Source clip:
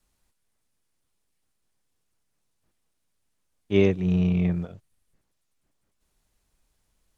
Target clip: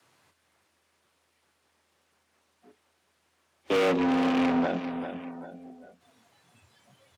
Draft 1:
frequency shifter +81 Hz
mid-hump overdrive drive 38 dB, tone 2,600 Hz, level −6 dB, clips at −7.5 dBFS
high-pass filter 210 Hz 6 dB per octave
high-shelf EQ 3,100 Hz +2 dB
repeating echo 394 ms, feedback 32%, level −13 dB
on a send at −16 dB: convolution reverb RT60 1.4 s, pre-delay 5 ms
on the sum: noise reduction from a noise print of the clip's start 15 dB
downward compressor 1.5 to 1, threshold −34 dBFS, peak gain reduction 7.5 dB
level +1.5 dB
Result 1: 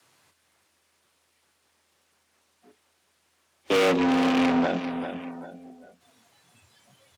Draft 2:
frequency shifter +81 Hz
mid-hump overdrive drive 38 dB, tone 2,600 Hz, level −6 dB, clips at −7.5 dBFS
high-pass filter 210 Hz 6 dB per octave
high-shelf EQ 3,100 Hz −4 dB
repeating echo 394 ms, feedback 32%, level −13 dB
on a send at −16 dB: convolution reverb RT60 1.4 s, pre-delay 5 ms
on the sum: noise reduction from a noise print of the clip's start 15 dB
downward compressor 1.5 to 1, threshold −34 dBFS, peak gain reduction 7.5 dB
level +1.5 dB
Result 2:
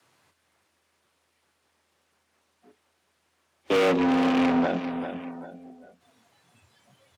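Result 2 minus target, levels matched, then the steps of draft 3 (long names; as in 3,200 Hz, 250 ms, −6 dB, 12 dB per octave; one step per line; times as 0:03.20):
downward compressor: peak gain reduction −2.5 dB
frequency shifter +81 Hz
mid-hump overdrive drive 38 dB, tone 2,600 Hz, level −6 dB, clips at −7.5 dBFS
high-pass filter 210 Hz 6 dB per octave
high-shelf EQ 3,100 Hz −4 dB
repeating echo 394 ms, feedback 32%, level −13 dB
on a send at −16 dB: convolution reverb RT60 1.4 s, pre-delay 5 ms
on the sum: noise reduction from a noise print of the clip's start 15 dB
downward compressor 1.5 to 1, threshold −41.5 dBFS, peak gain reduction 10 dB
level +1.5 dB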